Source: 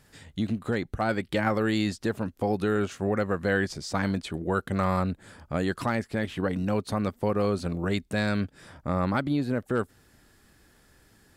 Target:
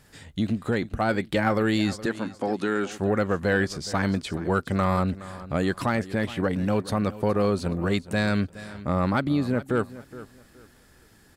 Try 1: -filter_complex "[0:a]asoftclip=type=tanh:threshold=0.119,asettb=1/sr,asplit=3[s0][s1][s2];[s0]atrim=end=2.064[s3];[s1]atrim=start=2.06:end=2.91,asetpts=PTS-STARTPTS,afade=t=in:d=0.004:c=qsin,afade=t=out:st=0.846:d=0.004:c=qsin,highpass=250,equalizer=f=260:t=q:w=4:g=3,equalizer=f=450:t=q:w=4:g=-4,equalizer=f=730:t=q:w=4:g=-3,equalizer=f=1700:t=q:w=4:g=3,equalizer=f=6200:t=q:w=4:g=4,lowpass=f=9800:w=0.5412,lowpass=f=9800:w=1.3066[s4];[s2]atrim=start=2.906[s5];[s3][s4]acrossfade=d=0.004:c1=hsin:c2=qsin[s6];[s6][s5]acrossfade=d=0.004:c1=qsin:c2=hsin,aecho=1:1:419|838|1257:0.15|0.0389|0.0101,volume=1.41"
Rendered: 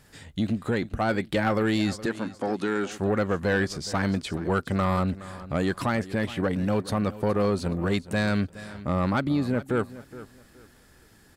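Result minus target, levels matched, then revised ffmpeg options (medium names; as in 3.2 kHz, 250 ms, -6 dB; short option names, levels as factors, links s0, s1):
saturation: distortion +9 dB
-filter_complex "[0:a]asoftclip=type=tanh:threshold=0.237,asettb=1/sr,asplit=3[s0][s1][s2];[s0]atrim=end=2.064[s3];[s1]atrim=start=2.06:end=2.91,asetpts=PTS-STARTPTS,afade=t=in:d=0.004:c=qsin,afade=t=out:st=0.846:d=0.004:c=qsin,highpass=250,equalizer=f=260:t=q:w=4:g=3,equalizer=f=450:t=q:w=4:g=-4,equalizer=f=730:t=q:w=4:g=-3,equalizer=f=1700:t=q:w=4:g=3,equalizer=f=6200:t=q:w=4:g=4,lowpass=f=9800:w=0.5412,lowpass=f=9800:w=1.3066[s4];[s2]atrim=start=2.906[s5];[s3][s4]acrossfade=d=0.004:c1=hsin:c2=qsin[s6];[s6][s5]acrossfade=d=0.004:c1=qsin:c2=hsin,aecho=1:1:419|838|1257:0.15|0.0389|0.0101,volume=1.41"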